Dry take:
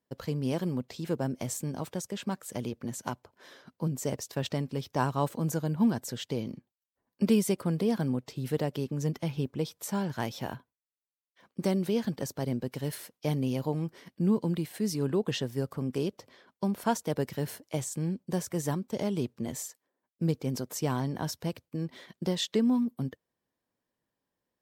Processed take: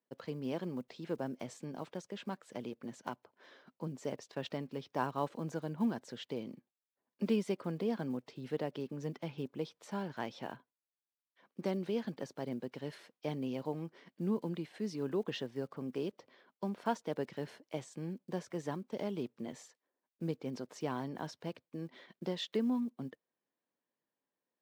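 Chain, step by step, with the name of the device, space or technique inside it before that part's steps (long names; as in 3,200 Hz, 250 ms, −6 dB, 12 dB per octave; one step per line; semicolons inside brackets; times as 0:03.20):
early digital voice recorder (band-pass filter 210–3,800 Hz; one scale factor per block 7 bits)
level −5.5 dB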